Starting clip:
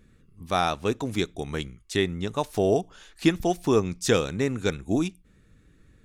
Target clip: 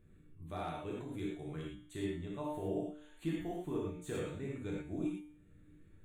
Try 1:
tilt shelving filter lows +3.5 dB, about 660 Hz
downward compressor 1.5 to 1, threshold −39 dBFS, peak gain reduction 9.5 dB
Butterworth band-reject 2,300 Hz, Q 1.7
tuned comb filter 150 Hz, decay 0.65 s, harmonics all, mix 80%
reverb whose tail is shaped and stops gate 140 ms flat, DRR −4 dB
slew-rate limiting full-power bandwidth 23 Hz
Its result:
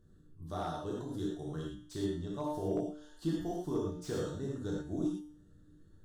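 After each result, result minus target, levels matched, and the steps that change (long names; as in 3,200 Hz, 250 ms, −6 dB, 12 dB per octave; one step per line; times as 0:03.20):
2,000 Hz band −5.5 dB; downward compressor: peak gain reduction −3.5 dB
change: Butterworth band-reject 5,200 Hz, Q 1.7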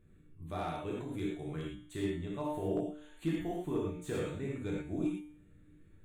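downward compressor: peak gain reduction −3.5 dB
change: downward compressor 1.5 to 1, threshold −49 dBFS, peak gain reduction 13 dB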